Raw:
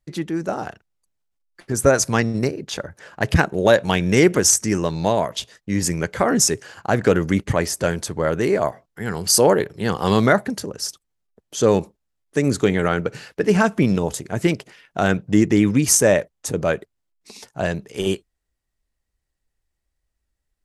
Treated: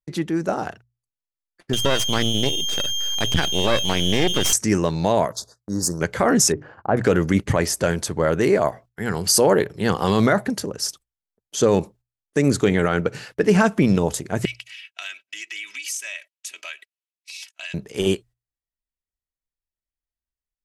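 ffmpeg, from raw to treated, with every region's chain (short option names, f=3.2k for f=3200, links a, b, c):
-filter_complex "[0:a]asettb=1/sr,asplit=3[a][b][c];[a]atrim=end=1.734[d];[b]atrim=start=1.73:end=4.53,asetpts=PTS-STARTPTS,afade=t=in:d=0.004:c=qsin,afade=t=out:st=2.796:d=0.004:c=qsin,highshelf=f=5.7k:g=-8.5,aeval=exprs='val(0)+0.112*sin(2*PI*3200*n/s)':c=same,aeval=exprs='max(val(0),0)':c=same[e];[c]atrim=start=4.526[f];[d][e]acrossfade=d=0.004:c1=hsin:c2=qsin[g];[g][f]acrossfade=d=0.004:c1=qsin:c2=hsin,asettb=1/sr,asplit=3[h][i][j];[h]atrim=end=5.324[k];[i]atrim=start=5.32:end=6.01,asetpts=PTS-STARTPTS,afade=t=in:d=0.004:c=qsin,afade=t=out:st=0.686:d=0.004:c=qsin,lowshelf=f=330:g=-7.5,volume=16dB,asoftclip=hard,volume=-16dB,asuperstop=centerf=2500:order=8:qfactor=0.89[l];[j]atrim=start=6.006[m];[k][l]acrossfade=d=0.004:c1=hsin:c2=qsin[n];[n][m]acrossfade=d=0.004:c1=qsin:c2=hsin,asettb=1/sr,asplit=3[o][p][q];[o]atrim=end=6.524[r];[p]atrim=start=6.52:end=6.97,asetpts=PTS-STARTPTS,afade=t=in:d=0.004:c=qsin,afade=t=out:st=0.446:d=0.004:c=qsin,lowpass=1.2k,bandreject=f=50:t=h:w=6,bandreject=f=100:t=h:w=6,bandreject=f=150:t=h:w=6,bandreject=f=200:t=h:w=6,bandreject=f=250:t=h:w=6,bandreject=f=300:t=h:w=6,bandreject=f=350:t=h:w=6[s];[q]atrim=start=6.966[t];[r][s]acrossfade=d=0.004:c1=hsin:c2=qsin[u];[u][t]acrossfade=d=0.004:c1=qsin:c2=hsin,asettb=1/sr,asplit=3[v][w][x];[v]atrim=end=14.454[y];[w]atrim=start=14.45:end=17.74,asetpts=PTS-STARTPTS,afade=t=in:d=0.004:c=qsin,afade=t=out:st=3.286:d=0.004:c=qsin,highpass=f=2.6k:t=q:w=3.5,aecho=1:1:3.1:0.83,atrim=end_sample=145089,acompressor=threshold=-34dB:ratio=3:attack=3.2:release=140:knee=1:detection=peak[z];[x]atrim=start=17.736[aa];[y][z]acrossfade=d=0.004:c1=hsin:c2=qsin[ab];[ab][aa]acrossfade=d=0.004:c1=qsin:c2=hsin,agate=range=-19dB:threshold=-44dB:ratio=16:detection=peak,bandreject=f=60:t=h:w=6,bandreject=f=120:t=h:w=6,alimiter=limit=-8dB:level=0:latency=1:release=21,volume=1.5dB"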